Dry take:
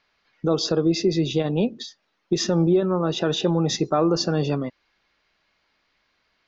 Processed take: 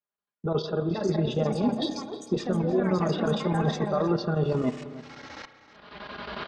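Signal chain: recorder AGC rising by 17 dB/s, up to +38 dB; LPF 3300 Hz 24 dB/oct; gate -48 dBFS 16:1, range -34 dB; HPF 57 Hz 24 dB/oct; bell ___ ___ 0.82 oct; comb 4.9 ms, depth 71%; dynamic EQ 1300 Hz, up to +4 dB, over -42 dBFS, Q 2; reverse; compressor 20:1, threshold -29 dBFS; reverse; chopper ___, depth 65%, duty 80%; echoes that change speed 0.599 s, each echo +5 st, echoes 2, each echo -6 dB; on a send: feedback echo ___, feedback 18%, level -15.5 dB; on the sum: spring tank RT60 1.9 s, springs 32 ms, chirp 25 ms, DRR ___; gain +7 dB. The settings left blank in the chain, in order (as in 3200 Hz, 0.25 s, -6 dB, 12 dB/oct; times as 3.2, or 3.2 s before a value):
2200 Hz, -12 dB, 11 Hz, 0.311 s, 11.5 dB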